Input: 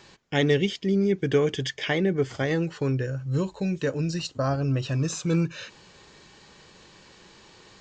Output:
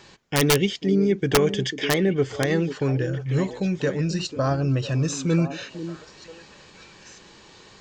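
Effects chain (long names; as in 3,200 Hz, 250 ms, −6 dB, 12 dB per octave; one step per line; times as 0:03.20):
echo through a band-pass that steps 493 ms, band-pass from 280 Hz, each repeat 1.4 octaves, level −7 dB
wrap-around overflow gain 12.5 dB
level +2.5 dB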